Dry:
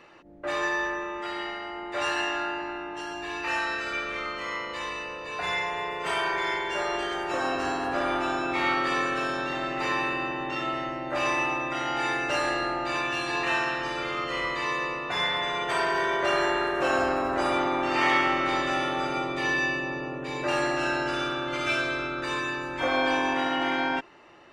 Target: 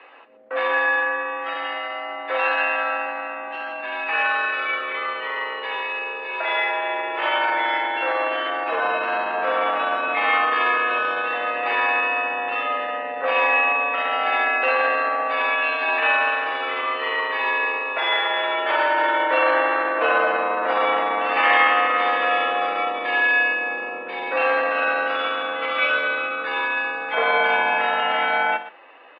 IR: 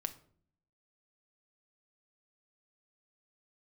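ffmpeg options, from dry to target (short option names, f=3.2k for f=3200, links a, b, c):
-filter_complex "[0:a]highpass=f=520:t=q:w=0.5412,highpass=f=520:t=q:w=1.307,lowpass=f=3.4k:t=q:w=0.5176,lowpass=f=3.4k:t=q:w=0.7071,lowpass=f=3.4k:t=q:w=1.932,afreqshift=-66,aecho=1:1:106:0.2,asplit=2[a][b];[1:a]atrim=start_sample=2205,atrim=end_sample=3528,highshelf=f=8.6k:g=4.5[c];[b][c]afir=irnorm=-1:irlink=0,volume=3dB[d];[a][d]amix=inputs=2:normalize=0,atempo=0.84"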